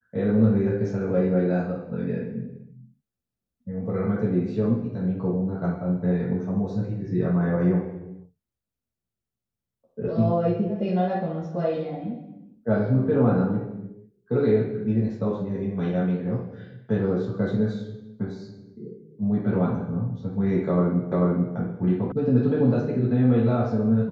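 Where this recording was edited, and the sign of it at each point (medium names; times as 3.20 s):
21.12 s: repeat of the last 0.44 s
22.12 s: sound stops dead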